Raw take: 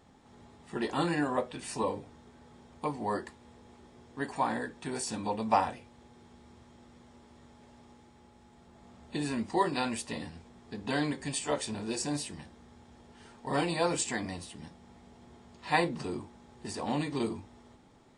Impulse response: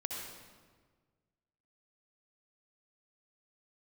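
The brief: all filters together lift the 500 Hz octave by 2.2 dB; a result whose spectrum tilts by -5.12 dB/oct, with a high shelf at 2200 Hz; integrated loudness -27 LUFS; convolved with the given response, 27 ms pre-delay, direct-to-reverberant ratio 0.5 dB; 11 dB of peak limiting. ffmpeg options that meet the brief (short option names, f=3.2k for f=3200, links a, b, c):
-filter_complex "[0:a]equalizer=f=500:t=o:g=3,highshelf=f=2.2k:g=-4,alimiter=limit=-23dB:level=0:latency=1,asplit=2[a][b];[1:a]atrim=start_sample=2205,adelay=27[c];[b][c]afir=irnorm=-1:irlink=0,volume=-2dB[d];[a][d]amix=inputs=2:normalize=0,volume=6dB"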